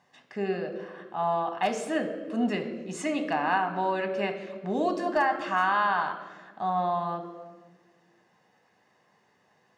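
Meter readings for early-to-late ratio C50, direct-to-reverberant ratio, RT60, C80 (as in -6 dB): 9.5 dB, 6.0 dB, 1.4 s, 11.0 dB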